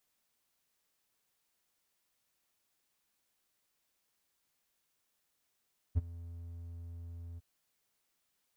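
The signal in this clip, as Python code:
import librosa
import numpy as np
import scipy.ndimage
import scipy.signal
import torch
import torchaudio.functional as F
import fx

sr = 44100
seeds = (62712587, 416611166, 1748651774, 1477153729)

y = fx.adsr_tone(sr, wave='triangle', hz=84.9, attack_ms=27.0, decay_ms=24.0, sustain_db=-20.0, held_s=1.43, release_ms=25.0, level_db=-21.0)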